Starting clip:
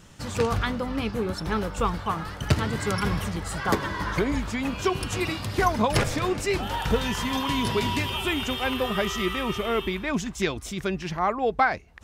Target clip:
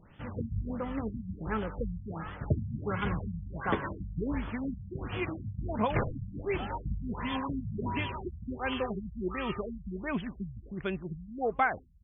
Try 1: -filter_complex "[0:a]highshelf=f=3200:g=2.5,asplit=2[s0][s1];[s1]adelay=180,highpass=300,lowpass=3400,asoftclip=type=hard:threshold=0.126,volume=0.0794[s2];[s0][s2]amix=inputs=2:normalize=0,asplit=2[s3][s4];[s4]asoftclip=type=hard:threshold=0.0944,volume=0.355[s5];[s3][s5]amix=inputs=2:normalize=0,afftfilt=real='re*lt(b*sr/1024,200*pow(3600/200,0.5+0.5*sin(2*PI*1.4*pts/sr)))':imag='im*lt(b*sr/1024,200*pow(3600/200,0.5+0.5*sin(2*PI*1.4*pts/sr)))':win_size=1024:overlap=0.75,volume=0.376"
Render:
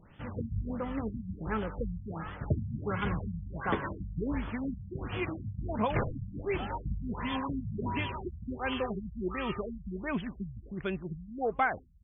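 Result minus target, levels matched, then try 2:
hard clipper: distortion +29 dB
-filter_complex "[0:a]highshelf=f=3200:g=2.5,asplit=2[s0][s1];[s1]adelay=180,highpass=300,lowpass=3400,asoftclip=type=hard:threshold=0.126,volume=0.0794[s2];[s0][s2]amix=inputs=2:normalize=0,asplit=2[s3][s4];[s4]asoftclip=type=hard:threshold=0.299,volume=0.355[s5];[s3][s5]amix=inputs=2:normalize=0,afftfilt=real='re*lt(b*sr/1024,200*pow(3600/200,0.5+0.5*sin(2*PI*1.4*pts/sr)))':imag='im*lt(b*sr/1024,200*pow(3600/200,0.5+0.5*sin(2*PI*1.4*pts/sr)))':win_size=1024:overlap=0.75,volume=0.376"

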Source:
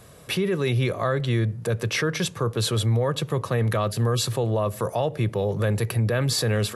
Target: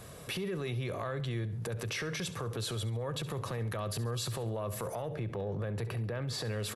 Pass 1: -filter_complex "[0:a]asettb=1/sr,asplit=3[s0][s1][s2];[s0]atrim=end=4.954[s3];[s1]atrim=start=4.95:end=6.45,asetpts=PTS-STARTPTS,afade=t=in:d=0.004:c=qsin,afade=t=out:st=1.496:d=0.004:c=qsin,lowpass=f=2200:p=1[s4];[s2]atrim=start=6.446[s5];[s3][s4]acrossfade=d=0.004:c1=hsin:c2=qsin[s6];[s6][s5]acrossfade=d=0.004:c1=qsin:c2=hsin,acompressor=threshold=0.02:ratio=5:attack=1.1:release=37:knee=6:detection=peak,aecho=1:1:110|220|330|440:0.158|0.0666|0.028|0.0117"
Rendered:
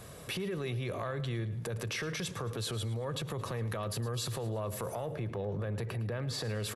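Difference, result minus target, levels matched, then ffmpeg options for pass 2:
echo 42 ms late
-filter_complex "[0:a]asettb=1/sr,asplit=3[s0][s1][s2];[s0]atrim=end=4.954[s3];[s1]atrim=start=4.95:end=6.45,asetpts=PTS-STARTPTS,afade=t=in:d=0.004:c=qsin,afade=t=out:st=1.496:d=0.004:c=qsin,lowpass=f=2200:p=1[s4];[s2]atrim=start=6.446[s5];[s3][s4]acrossfade=d=0.004:c1=hsin:c2=qsin[s6];[s6][s5]acrossfade=d=0.004:c1=qsin:c2=hsin,acompressor=threshold=0.02:ratio=5:attack=1.1:release=37:knee=6:detection=peak,aecho=1:1:68|136|204|272:0.158|0.0666|0.028|0.0117"

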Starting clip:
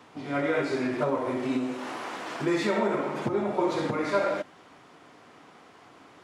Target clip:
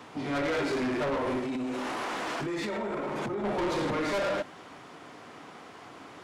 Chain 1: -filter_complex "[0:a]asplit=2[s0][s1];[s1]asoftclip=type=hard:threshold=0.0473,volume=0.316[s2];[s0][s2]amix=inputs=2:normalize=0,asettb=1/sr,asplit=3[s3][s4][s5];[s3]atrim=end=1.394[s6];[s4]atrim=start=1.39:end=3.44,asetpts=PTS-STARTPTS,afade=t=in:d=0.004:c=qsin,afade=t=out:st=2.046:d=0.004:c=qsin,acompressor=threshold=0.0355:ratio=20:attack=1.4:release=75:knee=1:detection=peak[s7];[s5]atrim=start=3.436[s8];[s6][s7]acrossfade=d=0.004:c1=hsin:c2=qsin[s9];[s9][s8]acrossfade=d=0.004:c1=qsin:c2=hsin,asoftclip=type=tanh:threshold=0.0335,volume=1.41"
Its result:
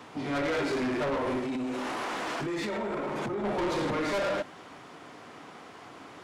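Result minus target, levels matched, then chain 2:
hard clipper: distortion +20 dB
-filter_complex "[0:a]asplit=2[s0][s1];[s1]asoftclip=type=hard:threshold=0.141,volume=0.316[s2];[s0][s2]amix=inputs=2:normalize=0,asettb=1/sr,asplit=3[s3][s4][s5];[s3]atrim=end=1.394[s6];[s4]atrim=start=1.39:end=3.44,asetpts=PTS-STARTPTS,afade=t=in:d=0.004:c=qsin,afade=t=out:st=2.046:d=0.004:c=qsin,acompressor=threshold=0.0355:ratio=20:attack=1.4:release=75:knee=1:detection=peak[s7];[s5]atrim=start=3.436[s8];[s6][s7]acrossfade=d=0.004:c1=hsin:c2=qsin[s9];[s9][s8]acrossfade=d=0.004:c1=qsin:c2=hsin,asoftclip=type=tanh:threshold=0.0335,volume=1.41"

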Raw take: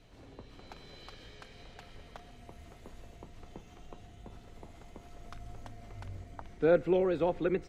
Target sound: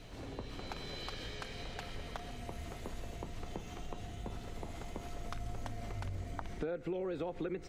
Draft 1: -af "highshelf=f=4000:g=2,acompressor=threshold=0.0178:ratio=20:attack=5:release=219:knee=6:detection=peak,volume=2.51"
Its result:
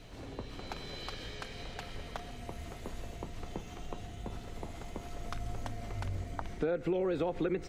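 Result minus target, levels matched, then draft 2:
compression: peak gain reduction -6 dB
-af "highshelf=f=4000:g=2,acompressor=threshold=0.00841:ratio=20:attack=5:release=219:knee=6:detection=peak,volume=2.51"

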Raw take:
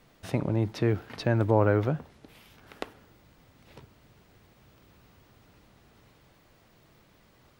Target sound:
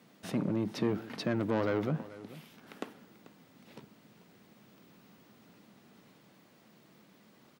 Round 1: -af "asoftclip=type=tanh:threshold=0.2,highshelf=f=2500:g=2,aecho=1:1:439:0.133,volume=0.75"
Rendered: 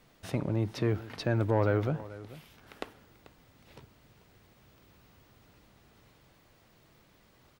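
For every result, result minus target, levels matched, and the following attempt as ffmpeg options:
saturation: distortion -10 dB; 250 Hz band -3.5 dB
-af "asoftclip=type=tanh:threshold=0.0708,highshelf=f=2500:g=2,aecho=1:1:439:0.133,volume=0.75"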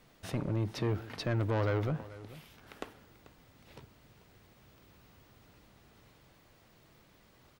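250 Hz band -4.0 dB
-af "asoftclip=type=tanh:threshold=0.0708,highpass=f=200:t=q:w=2.4,highshelf=f=2500:g=2,aecho=1:1:439:0.133,volume=0.75"

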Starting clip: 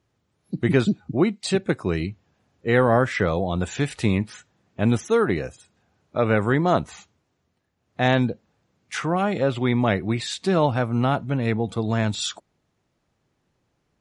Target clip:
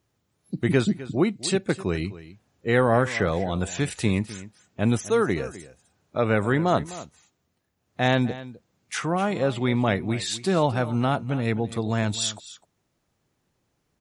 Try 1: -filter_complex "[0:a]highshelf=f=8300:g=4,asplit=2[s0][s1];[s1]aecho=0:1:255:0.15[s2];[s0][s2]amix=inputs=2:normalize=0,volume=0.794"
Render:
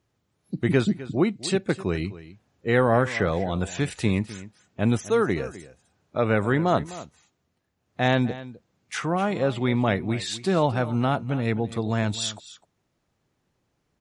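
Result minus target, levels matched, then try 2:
8 kHz band -3.5 dB
-filter_complex "[0:a]highshelf=f=8300:g=12.5,asplit=2[s0][s1];[s1]aecho=0:1:255:0.15[s2];[s0][s2]amix=inputs=2:normalize=0,volume=0.794"

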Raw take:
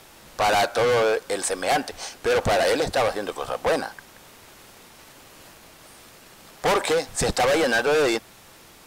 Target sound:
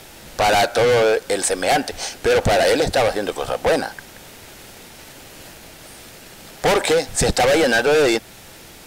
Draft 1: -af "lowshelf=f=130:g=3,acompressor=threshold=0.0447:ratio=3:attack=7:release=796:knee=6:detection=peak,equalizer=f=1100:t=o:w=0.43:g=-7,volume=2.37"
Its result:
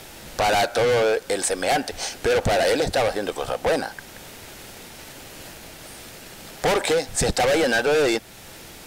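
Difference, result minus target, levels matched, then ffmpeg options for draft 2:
compression: peak gain reduction +4 dB
-af "lowshelf=f=130:g=3,acompressor=threshold=0.0944:ratio=3:attack=7:release=796:knee=6:detection=peak,equalizer=f=1100:t=o:w=0.43:g=-7,volume=2.37"

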